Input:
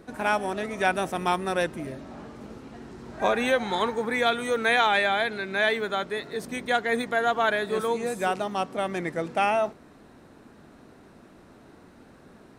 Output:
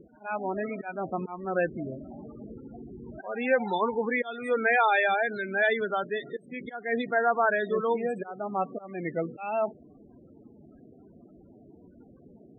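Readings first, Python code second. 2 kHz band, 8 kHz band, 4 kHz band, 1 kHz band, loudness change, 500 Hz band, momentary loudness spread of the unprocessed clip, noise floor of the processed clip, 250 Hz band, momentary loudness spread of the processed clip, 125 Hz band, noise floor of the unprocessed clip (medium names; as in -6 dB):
-2.5 dB, under -20 dB, -12.0 dB, -3.0 dB, -2.5 dB, -1.5 dB, 16 LU, -55 dBFS, -2.0 dB, 18 LU, -2.5 dB, -52 dBFS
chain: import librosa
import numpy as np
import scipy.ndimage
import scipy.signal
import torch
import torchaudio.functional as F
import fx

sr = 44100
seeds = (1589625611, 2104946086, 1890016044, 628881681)

y = fx.auto_swell(x, sr, attack_ms=314.0)
y = fx.spec_topn(y, sr, count=16)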